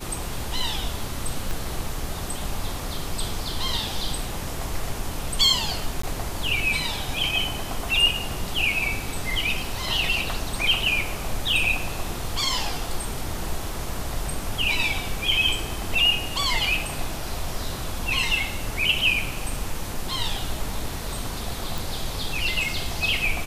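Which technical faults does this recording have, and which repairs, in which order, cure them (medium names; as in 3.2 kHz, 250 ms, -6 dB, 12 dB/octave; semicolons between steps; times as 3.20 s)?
1.51 s: pop
6.02–6.03 s: dropout 14 ms
21.78 s: pop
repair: de-click; interpolate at 6.02 s, 14 ms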